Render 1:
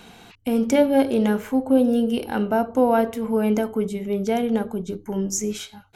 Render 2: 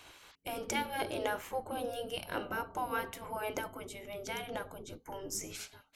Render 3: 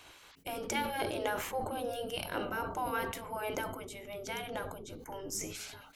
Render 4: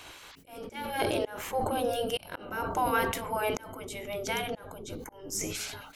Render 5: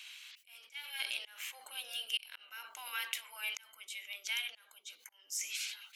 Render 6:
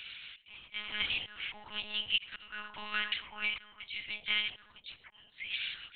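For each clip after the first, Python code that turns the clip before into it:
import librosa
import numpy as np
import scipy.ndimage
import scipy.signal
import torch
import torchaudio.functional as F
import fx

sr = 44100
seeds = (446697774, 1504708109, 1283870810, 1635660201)

y1 = fx.spec_gate(x, sr, threshold_db=-10, keep='weak')
y1 = F.gain(torch.from_numpy(y1), -5.0).numpy()
y2 = fx.sustainer(y1, sr, db_per_s=52.0)
y3 = fx.auto_swell(y2, sr, attack_ms=411.0)
y3 = F.gain(torch.from_numpy(y3), 7.5).numpy()
y4 = fx.highpass_res(y3, sr, hz=2600.0, q=2.1)
y4 = F.gain(torch.from_numpy(y4), -5.0).numpy()
y5 = fx.lpc_monotone(y4, sr, seeds[0], pitch_hz=210.0, order=8)
y5 = F.gain(torch.from_numpy(y5), 5.5).numpy()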